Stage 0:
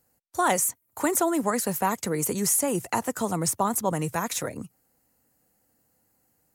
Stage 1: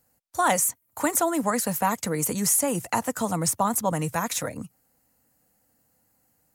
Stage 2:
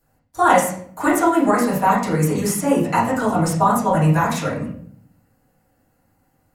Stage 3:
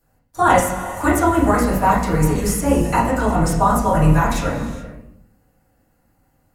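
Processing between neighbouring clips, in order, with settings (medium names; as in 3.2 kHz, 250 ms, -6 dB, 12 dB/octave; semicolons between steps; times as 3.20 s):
peaking EQ 380 Hz -13.5 dB 0.2 oct; trim +1.5 dB
reverberation RT60 0.60 s, pre-delay 3 ms, DRR -12 dB; trim -5 dB
octave divider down 2 oct, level -2 dB; gated-style reverb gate 450 ms flat, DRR 10 dB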